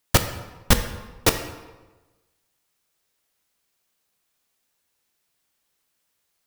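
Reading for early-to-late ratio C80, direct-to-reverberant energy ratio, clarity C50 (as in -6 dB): 11.0 dB, 7.5 dB, 9.5 dB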